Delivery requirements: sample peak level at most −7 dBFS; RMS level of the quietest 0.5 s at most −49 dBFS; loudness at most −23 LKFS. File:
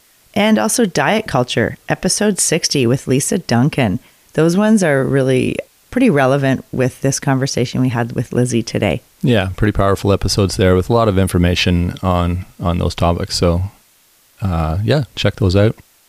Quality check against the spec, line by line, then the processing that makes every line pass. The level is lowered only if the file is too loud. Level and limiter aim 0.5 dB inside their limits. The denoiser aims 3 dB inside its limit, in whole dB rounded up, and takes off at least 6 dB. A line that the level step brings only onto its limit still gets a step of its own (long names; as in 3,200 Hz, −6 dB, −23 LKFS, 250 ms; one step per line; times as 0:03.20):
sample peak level −3.0 dBFS: out of spec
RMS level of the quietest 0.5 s −53 dBFS: in spec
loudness −15.5 LKFS: out of spec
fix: level −8 dB